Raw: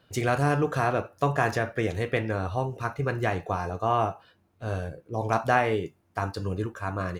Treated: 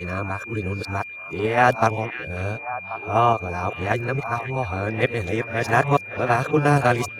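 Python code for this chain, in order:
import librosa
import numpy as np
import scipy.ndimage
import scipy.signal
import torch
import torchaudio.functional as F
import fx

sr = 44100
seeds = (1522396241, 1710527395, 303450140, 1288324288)

p1 = np.flip(x).copy()
p2 = fx.level_steps(p1, sr, step_db=24)
p3 = p1 + (p2 * librosa.db_to_amplitude(-1.5))
p4 = fx.echo_stepped(p3, sr, ms=543, hz=2500.0, octaves=-1.4, feedback_pct=70, wet_db=-8)
p5 = p4 + 10.0 ** (-36.0 / 20.0) * np.sin(2.0 * np.pi * 2400.0 * np.arange(len(p4)) / sr)
y = p5 * librosa.db_to_amplitude(2.0)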